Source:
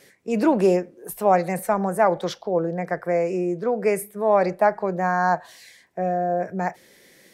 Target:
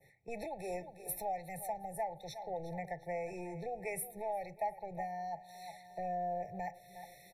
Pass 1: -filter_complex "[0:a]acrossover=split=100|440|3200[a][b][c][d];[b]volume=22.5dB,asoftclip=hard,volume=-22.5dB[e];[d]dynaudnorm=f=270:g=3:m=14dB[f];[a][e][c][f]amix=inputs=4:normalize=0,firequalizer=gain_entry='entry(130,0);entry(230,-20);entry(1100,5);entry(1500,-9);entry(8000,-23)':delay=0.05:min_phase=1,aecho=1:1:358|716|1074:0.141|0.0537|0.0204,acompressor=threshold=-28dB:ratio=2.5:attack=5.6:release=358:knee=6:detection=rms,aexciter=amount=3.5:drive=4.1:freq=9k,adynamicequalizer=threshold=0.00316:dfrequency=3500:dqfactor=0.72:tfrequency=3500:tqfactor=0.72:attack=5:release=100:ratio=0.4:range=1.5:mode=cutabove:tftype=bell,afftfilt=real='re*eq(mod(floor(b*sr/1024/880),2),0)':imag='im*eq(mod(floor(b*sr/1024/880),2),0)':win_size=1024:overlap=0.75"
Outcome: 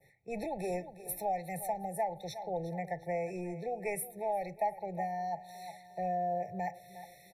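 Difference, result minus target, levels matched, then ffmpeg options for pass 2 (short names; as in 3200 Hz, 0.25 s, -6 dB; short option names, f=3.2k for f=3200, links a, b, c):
overloaded stage: distortion -7 dB; compressor: peak gain reduction -4 dB
-filter_complex "[0:a]acrossover=split=100|440|3200[a][b][c][d];[b]volume=31dB,asoftclip=hard,volume=-31dB[e];[d]dynaudnorm=f=270:g=3:m=14dB[f];[a][e][c][f]amix=inputs=4:normalize=0,firequalizer=gain_entry='entry(130,0);entry(230,-20);entry(1100,5);entry(1500,-9);entry(8000,-23)':delay=0.05:min_phase=1,aecho=1:1:358|716|1074:0.141|0.0537|0.0204,acompressor=threshold=-35dB:ratio=2.5:attack=5.6:release=358:knee=6:detection=rms,aexciter=amount=3.5:drive=4.1:freq=9k,adynamicequalizer=threshold=0.00316:dfrequency=3500:dqfactor=0.72:tfrequency=3500:tqfactor=0.72:attack=5:release=100:ratio=0.4:range=1.5:mode=cutabove:tftype=bell,afftfilt=real='re*eq(mod(floor(b*sr/1024/880),2),0)':imag='im*eq(mod(floor(b*sr/1024/880),2),0)':win_size=1024:overlap=0.75"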